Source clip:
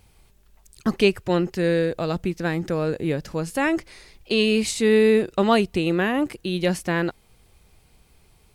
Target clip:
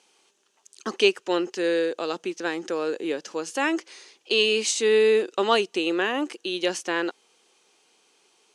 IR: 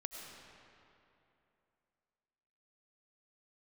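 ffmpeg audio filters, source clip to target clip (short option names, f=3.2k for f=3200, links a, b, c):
-af "highpass=f=320:w=0.5412,highpass=f=320:w=1.3066,equalizer=f=630:t=q:w=4:g=-6,equalizer=f=2.1k:t=q:w=4:g=-4,equalizer=f=3k:t=q:w=4:g=5,equalizer=f=6.2k:t=q:w=4:g=8,lowpass=f=9.2k:w=0.5412,lowpass=f=9.2k:w=1.3066"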